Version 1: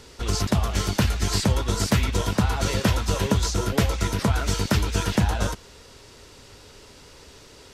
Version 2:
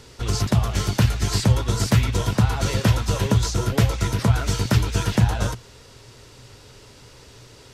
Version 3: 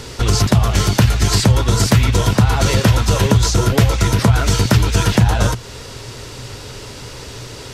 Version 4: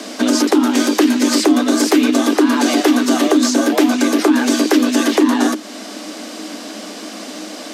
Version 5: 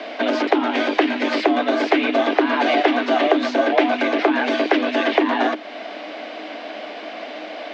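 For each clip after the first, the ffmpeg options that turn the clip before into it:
ffmpeg -i in.wav -af "equalizer=frequency=120:width_type=o:width=0.28:gain=13" out.wav
ffmpeg -i in.wav -filter_complex "[0:a]asplit=2[link_01][link_02];[link_02]alimiter=limit=-13.5dB:level=0:latency=1:release=35,volume=3dB[link_03];[link_01][link_03]amix=inputs=2:normalize=0,acompressor=threshold=-26dB:ratio=1.5,volume=6.5dB" out.wav
ffmpeg -i in.wav -filter_complex "[0:a]asplit=2[link_01][link_02];[link_02]alimiter=limit=-11dB:level=0:latency=1:release=458,volume=-2dB[link_03];[link_01][link_03]amix=inputs=2:normalize=0,afreqshift=190,volume=-3dB" out.wav
ffmpeg -i in.wav -af "highpass=460,equalizer=frequency=680:width_type=q:width=4:gain=7,equalizer=frequency=1200:width_type=q:width=4:gain=-4,equalizer=frequency=2200:width_type=q:width=4:gain=4,lowpass=frequency=3300:width=0.5412,lowpass=frequency=3300:width=1.3066" out.wav

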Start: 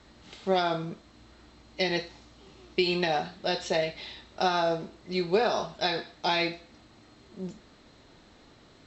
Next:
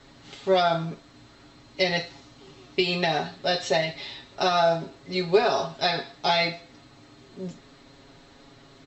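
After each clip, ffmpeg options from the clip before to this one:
ffmpeg -i in.wav -af "aecho=1:1:7.3:0.95,volume=1.5dB" out.wav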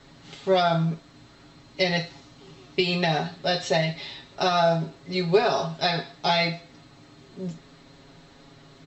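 ffmpeg -i in.wav -af "equalizer=frequency=160:width=6.3:gain=8.5" out.wav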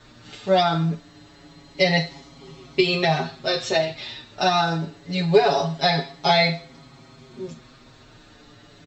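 ffmpeg -i in.wav -filter_complex "[0:a]asplit=2[link_01][link_02];[link_02]adelay=6.1,afreqshift=-0.25[link_03];[link_01][link_03]amix=inputs=2:normalize=1,volume=6dB" out.wav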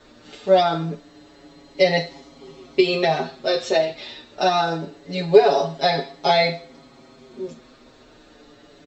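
ffmpeg -i in.wav -af "equalizer=frequency=125:width_type=o:width=1:gain=-9,equalizer=frequency=250:width_type=o:width=1:gain=4,equalizer=frequency=500:width_type=o:width=1:gain=7,volume=-2dB" out.wav

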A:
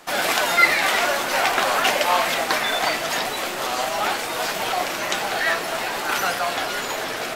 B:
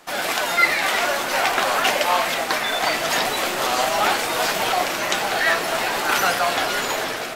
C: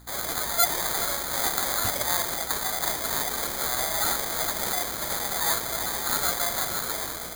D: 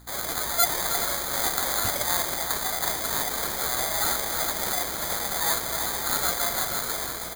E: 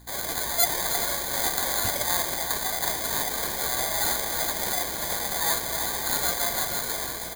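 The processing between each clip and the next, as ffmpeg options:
ffmpeg -i in.wav -af "dynaudnorm=framelen=120:gausssize=7:maxgain=6.5dB,volume=-2.5dB" out.wav
ffmpeg -i in.wav -af "acrusher=samples=16:mix=1:aa=0.000001,crystalizer=i=4:c=0,aeval=exprs='val(0)+0.0141*(sin(2*PI*60*n/s)+sin(2*PI*2*60*n/s)/2+sin(2*PI*3*60*n/s)/3+sin(2*PI*4*60*n/s)/4+sin(2*PI*5*60*n/s)/5)':channel_layout=same,volume=-12.5dB" out.wav
ffmpeg -i in.wav -af "aecho=1:1:319:0.335" out.wav
ffmpeg -i in.wav -af "asuperstop=centerf=1300:order=8:qfactor=6" out.wav

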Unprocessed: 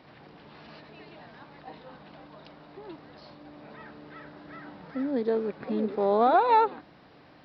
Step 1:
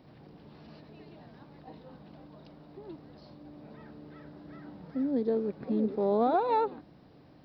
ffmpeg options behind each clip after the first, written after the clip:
ffmpeg -i in.wav -af "equalizer=frequency=1900:width=0.32:gain=-14,volume=3dB" out.wav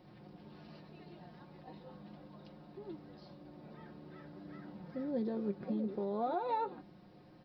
ffmpeg -i in.wav -af "aecho=1:1:5.6:0.53,alimiter=limit=-24dB:level=0:latency=1:release=191,flanger=delay=9.4:depth=1.8:regen=60:speed=0.4:shape=sinusoidal,volume=1dB" out.wav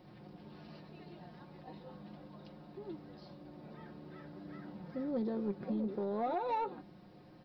ffmpeg -i in.wav -af "asoftclip=type=tanh:threshold=-28dB,volume=1.5dB" out.wav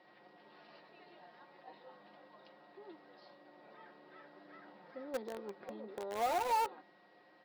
ffmpeg -i in.wav -filter_complex "[0:a]highpass=560,lowpass=4200,asplit=2[link_01][link_02];[link_02]acrusher=bits=5:mix=0:aa=0.000001,volume=-6dB[link_03];[link_01][link_03]amix=inputs=2:normalize=0,aeval=exprs='val(0)+0.000355*sin(2*PI*1900*n/s)':channel_layout=same" out.wav

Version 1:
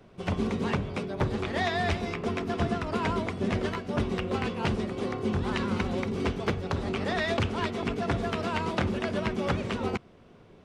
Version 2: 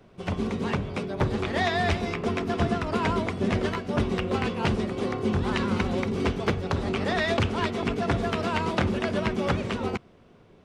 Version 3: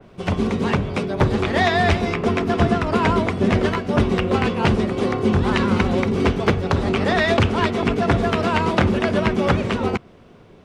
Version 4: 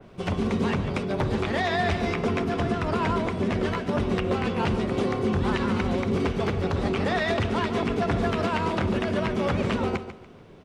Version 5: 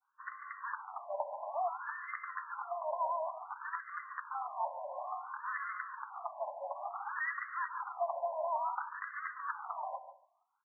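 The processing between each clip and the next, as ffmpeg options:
ffmpeg -i in.wav -af "dynaudnorm=framelen=110:gausssize=17:maxgain=3dB" out.wav
ffmpeg -i in.wav -af "adynamicequalizer=threshold=0.00891:dfrequency=3000:dqfactor=0.7:tfrequency=3000:tqfactor=0.7:attack=5:release=100:ratio=0.375:range=1.5:mode=cutabove:tftype=highshelf,volume=7.5dB" out.wav
ffmpeg -i in.wav -filter_complex "[0:a]alimiter=limit=-14dB:level=0:latency=1:release=140,asplit=2[link_01][link_02];[link_02]aecho=0:1:144|288|432:0.266|0.0798|0.0239[link_03];[link_01][link_03]amix=inputs=2:normalize=0,volume=-2dB" out.wav
ffmpeg -i in.wav -af "agate=range=-33dB:threshold=-38dB:ratio=3:detection=peak,afftfilt=real='re*between(b*sr/1024,740*pow(1500/740,0.5+0.5*sin(2*PI*0.57*pts/sr))/1.41,740*pow(1500/740,0.5+0.5*sin(2*PI*0.57*pts/sr))*1.41)':imag='im*between(b*sr/1024,740*pow(1500/740,0.5+0.5*sin(2*PI*0.57*pts/sr))/1.41,740*pow(1500/740,0.5+0.5*sin(2*PI*0.57*pts/sr))*1.41)':win_size=1024:overlap=0.75,volume=-4.5dB" out.wav

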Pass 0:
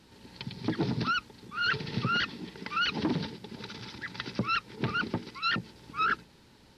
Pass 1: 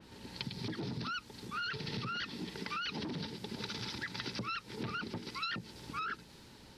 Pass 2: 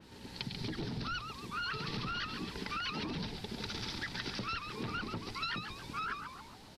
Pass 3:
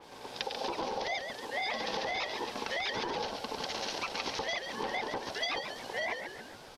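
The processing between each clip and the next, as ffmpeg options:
ffmpeg -i in.wav -af "alimiter=level_in=1.5dB:limit=-24dB:level=0:latency=1:release=17,volume=-1.5dB,acompressor=threshold=-39dB:ratio=6,adynamicequalizer=threshold=0.00126:dfrequency=3600:dqfactor=0.7:tfrequency=3600:tqfactor=0.7:attack=5:release=100:ratio=0.375:range=2.5:mode=boostabove:tftype=highshelf,volume=2dB" out.wav
ffmpeg -i in.wav -filter_complex "[0:a]asplit=7[link_01][link_02][link_03][link_04][link_05][link_06][link_07];[link_02]adelay=139,afreqshift=-130,volume=-7dB[link_08];[link_03]adelay=278,afreqshift=-260,volume=-13dB[link_09];[link_04]adelay=417,afreqshift=-390,volume=-19dB[link_10];[link_05]adelay=556,afreqshift=-520,volume=-25.1dB[link_11];[link_06]adelay=695,afreqshift=-650,volume=-31.1dB[link_12];[link_07]adelay=834,afreqshift=-780,volume=-37.1dB[link_13];[link_01][link_08][link_09][link_10][link_11][link_12][link_13]amix=inputs=7:normalize=0" out.wav
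ffmpeg -i in.wav -af "aeval=exprs='val(0)*sin(2*PI*660*n/s)':channel_layout=same,volume=6.5dB" out.wav

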